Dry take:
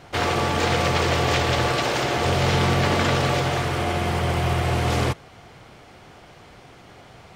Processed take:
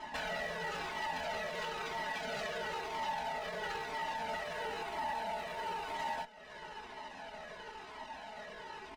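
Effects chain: band inversion scrambler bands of 1000 Hz; LPF 2200 Hz 6 dB/oct; low shelf 450 Hz -10 dB; comb 4.7 ms, depth 80%; compressor 12:1, threshold -36 dBFS, peak gain reduction 18 dB; Schroeder reverb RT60 1.7 s, combs from 26 ms, DRR 19.5 dB; tempo 0.82×; added harmonics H 8 -29 dB, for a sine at -35 dBFS; cascading flanger falling 1 Hz; gain +5.5 dB

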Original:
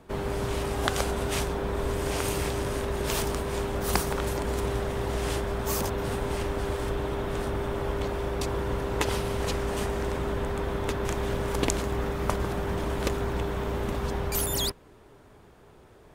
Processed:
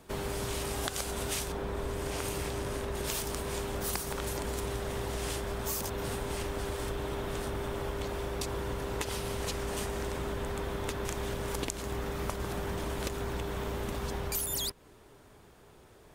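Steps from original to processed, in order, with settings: high shelf 3200 Hz +11.5 dB, from 1.52 s +2 dB, from 2.95 s +8 dB; compressor 6:1, threshold -27 dBFS, peak gain reduction 11.5 dB; gain -3.5 dB

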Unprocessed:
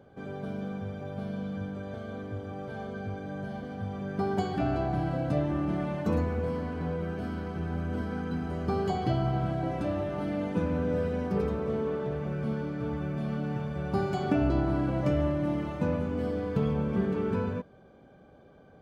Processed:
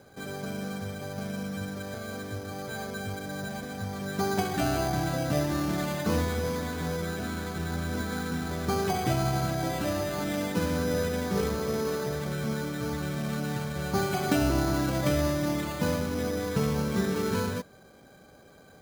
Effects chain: steep low-pass 3000 Hz; bell 2100 Hz +10.5 dB 1.6 oct; careless resampling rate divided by 8×, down none, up hold

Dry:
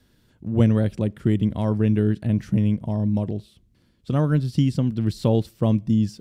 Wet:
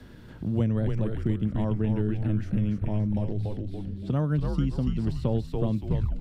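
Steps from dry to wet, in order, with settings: tape stop at the end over 0.40 s; high shelf 4400 Hz -7.5 dB; frequency-shifting echo 0.284 s, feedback 39%, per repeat -100 Hz, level -3.5 dB; three-band squash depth 70%; gain -7 dB

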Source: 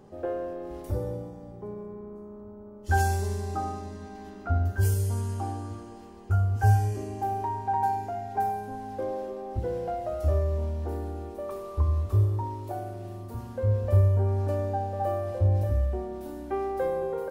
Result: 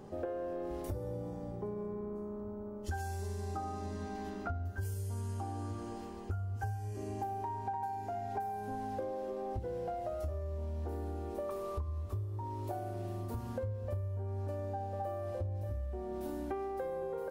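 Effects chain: compressor 12:1, threshold -37 dBFS, peak gain reduction 21.5 dB; gain +2 dB

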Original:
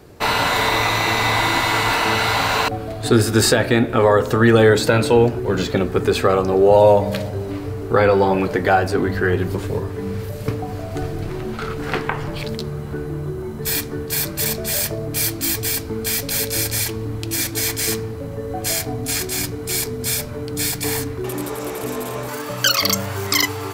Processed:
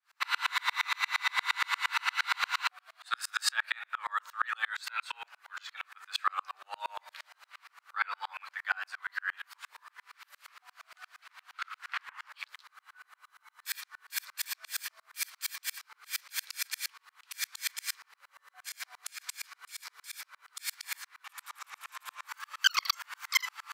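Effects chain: steep high-pass 1100 Hz 36 dB/oct; high shelf 5500 Hz -10 dB; 18.69–20.13 negative-ratio compressor -34 dBFS, ratio -1; dB-ramp tremolo swelling 8.6 Hz, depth 38 dB

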